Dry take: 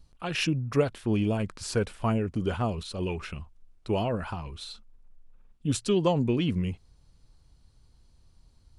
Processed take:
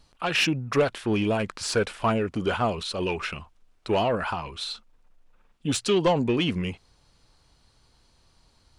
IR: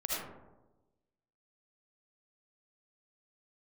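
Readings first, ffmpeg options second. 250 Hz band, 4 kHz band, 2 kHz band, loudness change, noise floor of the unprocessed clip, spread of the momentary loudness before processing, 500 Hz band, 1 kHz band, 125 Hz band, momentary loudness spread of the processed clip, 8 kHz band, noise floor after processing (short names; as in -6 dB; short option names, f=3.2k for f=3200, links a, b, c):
+1.0 dB, +7.0 dB, +8.0 dB, +3.0 dB, -61 dBFS, 15 LU, +4.0 dB, +6.5 dB, -2.0 dB, 11 LU, +4.5 dB, -63 dBFS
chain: -filter_complex "[0:a]asplit=2[a][b];[b]highpass=f=720:p=1,volume=16dB,asoftclip=type=tanh:threshold=-11.5dB[c];[a][c]amix=inputs=2:normalize=0,lowpass=f=4.5k:p=1,volume=-6dB"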